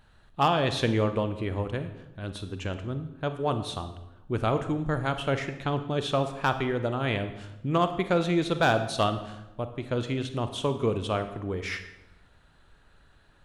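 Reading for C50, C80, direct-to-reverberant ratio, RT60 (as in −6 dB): 10.5 dB, 12.5 dB, 9.0 dB, 0.95 s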